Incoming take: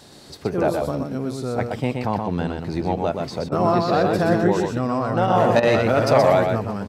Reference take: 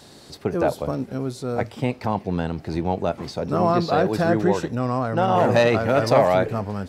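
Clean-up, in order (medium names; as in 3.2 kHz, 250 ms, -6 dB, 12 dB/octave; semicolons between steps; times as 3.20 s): interpolate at 3.49/5.60 s, 28 ms; inverse comb 124 ms -4.5 dB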